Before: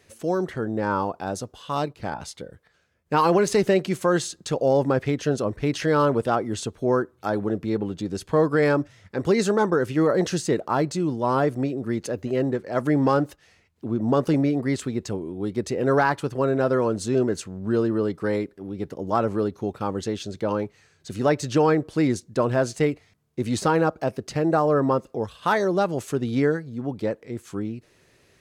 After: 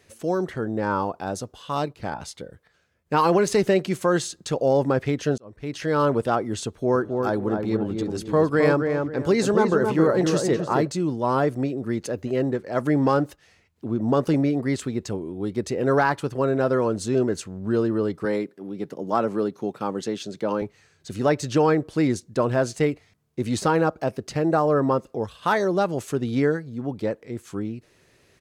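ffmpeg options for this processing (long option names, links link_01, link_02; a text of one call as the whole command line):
ffmpeg -i in.wav -filter_complex "[0:a]asplit=3[link_01][link_02][link_03];[link_01]afade=type=out:start_time=6.94:duration=0.02[link_04];[link_02]asplit=2[link_05][link_06];[link_06]adelay=268,lowpass=frequency=1500:poles=1,volume=-4dB,asplit=2[link_07][link_08];[link_08]adelay=268,lowpass=frequency=1500:poles=1,volume=0.32,asplit=2[link_09][link_10];[link_10]adelay=268,lowpass=frequency=1500:poles=1,volume=0.32,asplit=2[link_11][link_12];[link_12]adelay=268,lowpass=frequency=1500:poles=1,volume=0.32[link_13];[link_05][link_07][link_09][link_11][link_13]amix=inputs=5:normalize=0,afade=type=in:start_time=6.94:duration=0.02,afade=type=out:start_time=10.86:duration=0.02[link_14];[link_03]afade=type=in:start_time=10.86:duration=0.02[link_15];[link_04][link_14][link_15]amix=inputs=3:normalize=0,asettb=1/sr,asplit=3[link_16][link_17][link_18];[link_16]atrim=end=18.254[link_19];[link_17]atrim=start=18.25:end=20.62,asetpts=PTS-STARTPTS,afade=type=in:duration=0.004:curve=qsin,afade=type=out:start_time=2.366:duration=0.004:curve=qsin,highpass=frequency=140:width=0.5412,highpass=frequency=140:width=1.3066[link_20];[link_18]atrim=start=20.616[link_21];[link_19][link_20]acrossfade=duration=0.004:curve1=hsin:curve2=qsin[link_22];[link_22][link_21]acrossfade=duration=0.004:curve1=qsin:curve2=hsin,asplit=2[link_23][link_24];[link_23]atrim=end=5.38,asetpts=PTS-STARTPTS,afade=type=out:start_time=5.376:duration=0.004:curve=hsin[link_25];[link_24]atrim=start=5.38,asetpts=PTS-STARTPTS,afade=type=in:duration=0.7[link_26];[link_25][link_26]concat=n=2:v=0:a=1" out.wav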